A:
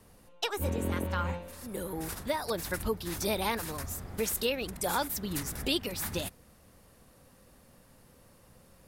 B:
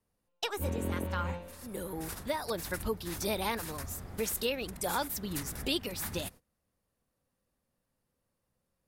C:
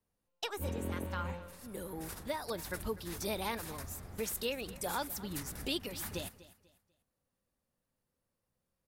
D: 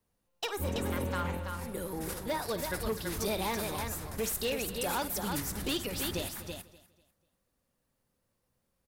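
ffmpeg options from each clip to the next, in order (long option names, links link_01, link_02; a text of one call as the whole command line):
ffmpeg -i in.wav -af "agate=range=-21dB:threshold=-47dB:ratio=16:detection=peak,volume=-2dB" out.wav
ffmpeg -i in.wav -af "aecho=1:1:246|492|738:0.126|0.0378|0.0113,volume=-4dB" out.wav
ffmpeg -i in.wav -af "aecho=1:1:54|331:0.178|0.473,volume=32.5dB,asoftclip=hard,volume=-32.5dB,volume=5dB" out.wav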